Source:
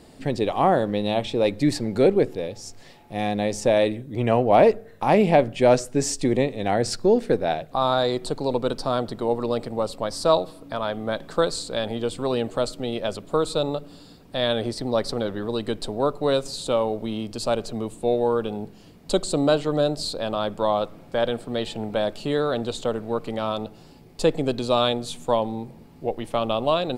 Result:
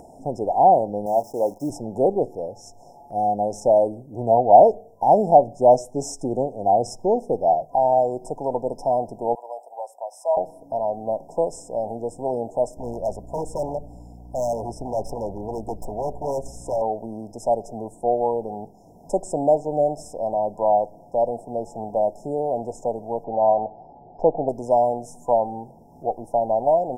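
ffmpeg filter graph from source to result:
-filter_complex "[0:a]asettb=1/sr,asplit=3[a][b][c];[a]atrim=end=1.064[d];[b]atrim=start=1.06:end=1.7,asetpts=PTS-STARTPTS,afade=t=in:d=0.004:c=qsin,afade=t=out:st=0.636:d=0.004:c=qsin,highpass=f=220:p=1,acrusher=bits=7:dc=4:mix=0:aa=0.000001,agate=range=-33dB:threshold=-39dB:ratio=3:release=100:detection=peak[e];[c]atrim=start=1.696[f];[d][e]acrossfade=d=0.004:c1=hsin:c2=qsin[g];[g][f]acrossfade=d=0.004:c1=qsin:c2=hsin,asettb=1/sr,asplit=3[h][i][j];[h]atrim=end=9.354[k];[i]atrim=start=9.35:end=10.37,asetpts=PTS-STARTPTS,afade=t=in:d=0.004:c=qsin,afade=t=out:st=1.016:d=0.004:c=qsin,highpass=f=710:w=0.5412,highpass=f=710:w=1.3066,equalizer=f=3.2k:t=o:w=2:g=-14.5[l];[j]atrim=start=10.366[m];[k][l]acrossfade=d=0.004:c1=hsin:c2=qsin[n];[n][m]acrossfade=d=0.004:c1=qsin:c2=hsin,asettb=1/sr,asplit=3[o][p][q];[o]atrim=end=12.774[r];[p]atrim=start=12.77:end=16.82,asetpts=PTS-STARTPTS,afade=t=in:d=0.004:c=qsin,afade=t=out:st=4.046:d=0.004:c=qsin,lowshelf=f=87:g=10.5,aeval=exprs='val(0)+0.0158*(sin(2*PI*60*n/s)+sin(2*PI*2*60*n/s)/2+sin(2*PI*3*60*n/s)/3+sin(2*PI*4*60*n/s)/4+sin(2*PI*5*60*n/s)/5)':c=same,aeval=exprs='0.112*(abs(mod(val(0)/0.112+3,4)-2)-1)':c=same[s];[q]atrim=start=16.816[t];[r][s]acrossfade=d=0.004:c1=hsin:c2=qsin[u];[u][t]acrossfade=d=0.004:c1=qsin:c2=hsin,asettb=1/sr,asplit=3[v][w][x];[v]atrim=end=23.244[y];[w]atrim=start=23.24:end=24.49,asetpts=PTS-STARTPTS,afade=t=in:d=0.004:c=qsin,afade=t=out:st=1.246:d=0.004:c=qsin,lowpass=f=3.1k:w=0.5412,lowpass=f=3.1k:w=1.3066,equalizer=f=760:t=o:w=1.1:g=7.5[z];[x]atrim=start=24.486[aa];[y][z]acrossfade=d=0.004:c1=hsin:c2=qsin[ab];[ab][aa]acrossfade=d=0.004:c1=qsin:c2=hsin,afftfilt=real='re*(1-between(b*sr/4096,1000,5100))':imag='im*(1-between(b*sr/4096,1000,5100))':win_size=4096:overlap=0.75,equalizer=f=720:t=o:w=0.7:g=14.5,acompressor=mode=upward:threshold=-34dB:ratio=2.5,volume=-6dB"

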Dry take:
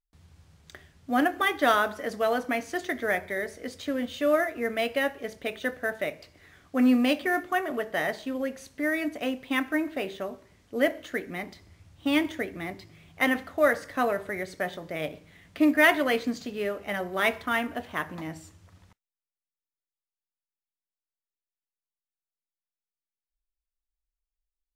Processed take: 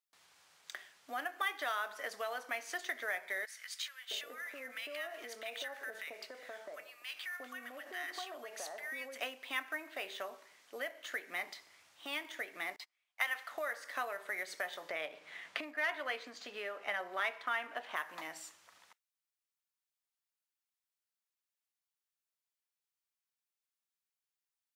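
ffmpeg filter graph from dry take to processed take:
-filter_complex "[0:a]asettb=1/sr,asplit=3[a][b][c];[a]atrim=end=3.454[d];[b]atrim=start=3.45:end=9.2,asetpts=PTS-STARTPTS,afade=t=in:d=0.004:c=qsin,afade=t=out:st=5.746:d=0.004:c=qsin,acompressor=threshold=-35dB:ratio=12:attack=3.2:release=140:knee=1:detection=peak,acrossover=split=1200[e][f];[e]adelay=660[g];[g][f]amix=inputs=2:normalize=0,atrim=end_sample=253575[h];[c]atrim=start=9.196[i];[d][h]acrossfade=d=0.004:c1=hsin:c2=qsin[j];[j][i]acrossfade=d=0.004:c1=qsin:c2=hsin,asettb=1/sr,asplit=3[k][l][m];[k]atrim=end=12.764[n];[l]atrim=start=12.76:end=13.52,asetpts=PTS-STARTPTS,afade=t=in:d=0.004:c=qsin,afade=t=out:st=0.756:d=0.004:c=qsin,highpass=720,agate=range=-28dB:threshold=-53dB:ratio=16:release=100:detection=peak[o];[m]atrim=start=13.516[p];[n][o]acrossfade=d=0.004:c1=hsin:c2=qsin[q];[q][p]acrossfade=d=0.004:c1=qsin:c2=hsin,asettb=1/sr,asplit=3[r][s][t];[r]atrim=end=14.894[u];[s]atrim=start=14.89:end=17.96,asetpts=PTS-STARTPTS,afade=t=in:d=0.004:c=qsin,afade=t=out:st=3.066:d=0.004:c=qsin,aemphasis=mode=reproduction:type=50kf,acontrast=77[v];[t]atrim=start=17.956[w];[u][v]acrossfade=d=0.004:c1=hsin:c2=qsin[x];[x][w]acrossfade=d=0.004:c1=qsin:c2=hsin,acompressor=threshold=-34dB:ratio=6,highpass=870,volume=2.5dB"

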